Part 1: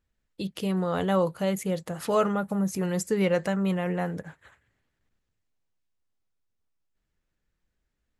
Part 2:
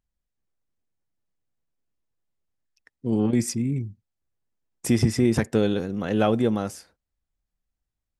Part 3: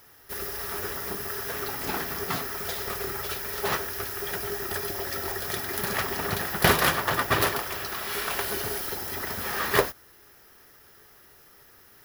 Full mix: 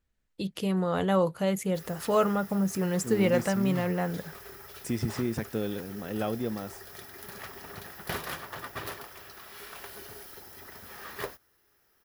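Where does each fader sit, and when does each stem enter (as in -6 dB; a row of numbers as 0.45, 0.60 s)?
-0.5, -10.0, -14.5 dB; 0.00, 0.00, 1.45 s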